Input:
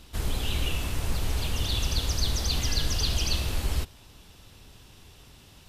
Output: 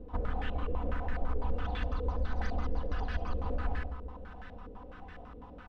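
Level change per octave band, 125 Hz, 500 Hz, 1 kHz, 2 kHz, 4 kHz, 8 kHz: −7.0 dB, 0.0 dB, +1.0 dB, −6.0 dB, −23.5 dB, below −30 dB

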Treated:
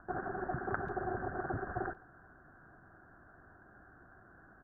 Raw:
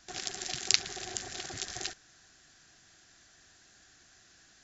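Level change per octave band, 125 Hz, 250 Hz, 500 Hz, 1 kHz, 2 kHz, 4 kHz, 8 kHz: +8.5 dB, +8.5 dB, +8.5 dB, +8.5 dB, −1.0 dB, below −40 dB, can't be measured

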